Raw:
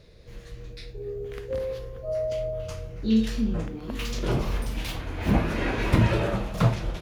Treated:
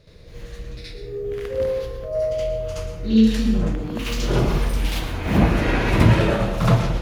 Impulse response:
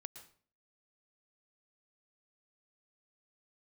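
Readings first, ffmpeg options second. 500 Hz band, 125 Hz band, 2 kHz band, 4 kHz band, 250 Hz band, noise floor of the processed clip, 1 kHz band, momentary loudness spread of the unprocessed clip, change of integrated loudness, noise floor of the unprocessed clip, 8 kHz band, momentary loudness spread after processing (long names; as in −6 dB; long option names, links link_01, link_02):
+6.0 dB, +6.0 dB, +6.0 dB, +6.5 dB, +6.5 dB, −39 dBFS, +6.5 dB, 14 LU, +6.5 dB, −45 dBFS, +6.0 dB, 16 LU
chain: -filter_complex "[0:a]asplit=2[link_01][link_02];[1:a]atrim=start_sample=2205,adelay=72[link_03];[link_02][link_03]afir=irnorm=-1:irlink=0,volume=12dB[link_04];[link_01][link_04]amix=inputs=2:normalize=0,volume=-1.5dB"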